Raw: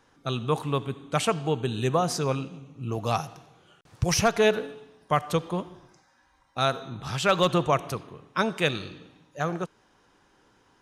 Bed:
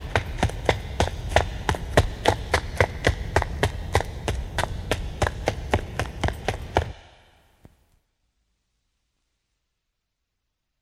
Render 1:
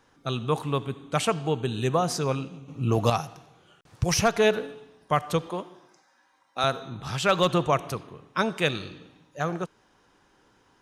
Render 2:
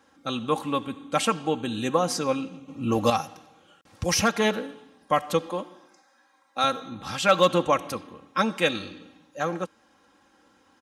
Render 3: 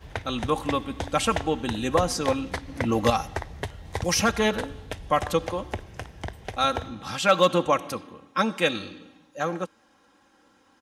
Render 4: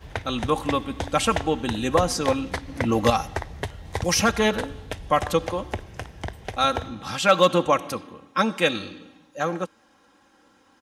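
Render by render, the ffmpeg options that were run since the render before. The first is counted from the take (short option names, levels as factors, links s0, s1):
-filter_complex "[0:a]asettb=1/sr,asplit=3[s0][s1][s2];[s0]atrim=end=2.684[s3];[s1]atrim=start=2.68:end=3.1,asetpts=PTS-STARTPTS,afade=t=in:d=0.004:c=qsin,afade=t=out:st=0.416:d=0.004:c=qsin,acontrast=87[s4];[s2]atrim=start=3.096[s5];[s3][s4]acrossfade=d=0.004:c1=hsin:c2=qsin[s6];[s6][s5]acrossfade=d=0.004:c1=qsin:c2=hsin,asettb=1/sr,asplit=3[s7][s8][s9];[s7]atrim=end=5.504[s10];[s8]atrim=start=5.5:end=6.64,asetpts=PTS-STARTPTS,afade=t=in:d=0.004:c=qsin,afade=t=out:st=1.136:d=0.004:c=qsin,highpass=270[s11];[s9]atrim=start=6.636[s12];[s10][s11]acrossfade=d=0.004:c1=hsin:c2=qsin[s13];[s13][s12]acrossfade=d=0.004:c1=qsin:c2=hsin"
-af "highpass=83,aecho=1:1:3.7:0.71"
-filter_complex "[1:a]volume=0.316[s0];[0:a][s0]amix=inputs=2:normalize=0"
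-af "volume=1.26"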